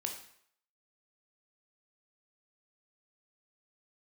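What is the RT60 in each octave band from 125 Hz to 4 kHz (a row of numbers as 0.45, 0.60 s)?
0.55, 0.55, 0.65, 0.65, 0.65, 0.60 s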